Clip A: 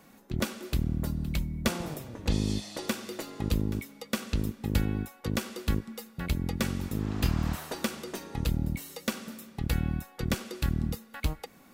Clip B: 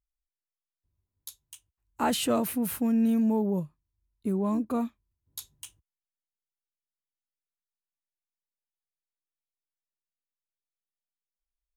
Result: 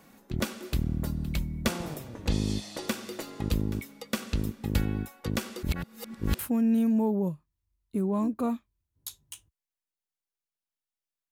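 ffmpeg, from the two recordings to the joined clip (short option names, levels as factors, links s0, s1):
-filter_complex "[0:a]apad=whole_dur=11.31,atrim=end=11.31,asplit=2[s0][s1];[s0]atrim=end=5.632[s2];[s1]atrim=start=5.628:end=6.392,asetpts=PTS-STARTPTS,areverse[s3];[1:a]atrim=start=2.698:end=7.62[s4];[s2][s3]acrossfade=d=0.004:c1=hsin:c2=hsin[s5];[s5][s4]acrossfade=d=0.004:c1=hsin:c2=hsin"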